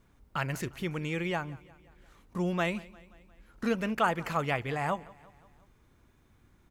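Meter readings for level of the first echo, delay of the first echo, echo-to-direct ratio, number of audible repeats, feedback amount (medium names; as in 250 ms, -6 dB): -22.0 dB, 176 ms, -20.5 dB, 3, 58%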